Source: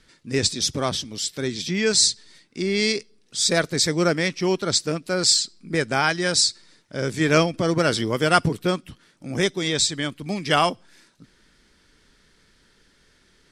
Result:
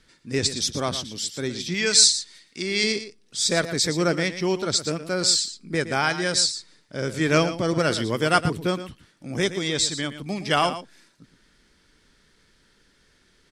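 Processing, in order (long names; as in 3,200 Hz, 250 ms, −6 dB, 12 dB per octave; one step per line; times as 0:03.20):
0:01.74–0:02.84: tilt shelving filter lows −5 dB, about 830 Hz
single-tap delay 116 ms −12 dB
level −2 dB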